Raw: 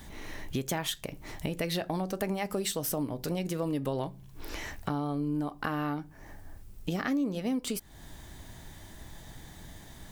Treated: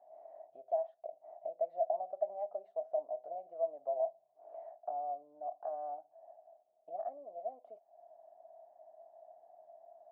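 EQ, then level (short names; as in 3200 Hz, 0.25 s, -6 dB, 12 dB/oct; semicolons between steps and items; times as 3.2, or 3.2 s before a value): Butterworth band-pass 670 Hz, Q 7; +8.5 dB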